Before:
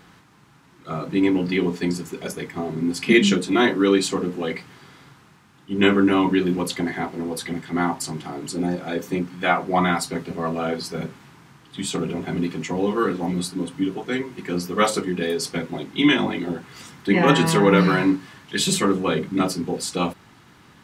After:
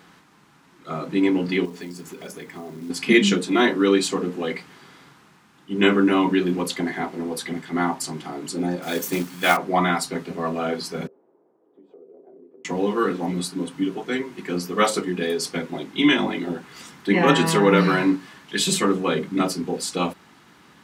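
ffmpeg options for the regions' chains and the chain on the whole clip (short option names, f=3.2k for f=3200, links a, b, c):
-filter_complex "[0:a]asettb=1/sr,asplit=3[a][b][c];[a]atrim=end=1.654[d];[b]atrim=start=1.65:end=2.9,asetpts=PTS-STARTPTS,afade=t=in:d=0.004:c=qsin,afade=t=out:st=1.246:d=0.004:c=qsin,acrusher=bits=5:mode=log:mix=0:aa=0.000001,acompressor=threshold=-34dB:ratio=3:attack=3.2:release=140:knee=1:detection=peak[e];[c]atrim=start=2.896[f];[d][e]acrossfade=d=0.004:c1=hsin:c2=qsin[g];[g][f]acrossfade=d=0.004:c1=qsin:c2=hsin,asettb=1/sr,asplit=3[h][i][j];[h]atrim=end=8.824[k];[i]atrim=start=8.82:end=9.57,asetpts=PTS-STARTPTS,afade=t=in:d=0.004:c=qsin,afade=t=out:st=0.746:d=0.004:c=qsin,aemphasis=mode=production:type=75kf,acrusher=bits=3:mode=log:mix=0:aa=0.000001[l];[j]atrim=start=9.566[m];[k][l]acrossfade=d=0.004:c1=hsin:c2=qsin[n];[n][m]acrossfade=d=0.004:c1=qsin:c2=hsin,asettb=1/sr,asplit=3[o][p][q];[o]atrim=end=11.074[r];[p]atrim=start=11.07:end=12.65,asetpts=PTS-STARTPTS,afade=t=in:d=0.004:c=qsin,afade=t=out:st=1.576:d=0.004:c=qsin,asuperpass=centerf=470:order=4:qfactor=1.8,acompressor=threshold=-47dB:ratio=4:attack=3.2:release=140:knee=1:detection=peak[s];[q]atrim=start=12.646[t];[r][s]acrossfade=d=0.004:c1=hsin:c2=qsin[u];[u][t]acrossfade=d=0.004:c1=qsin:c2=hsin,highpass=79,equalizer=f=110:w=2.7:g=-13"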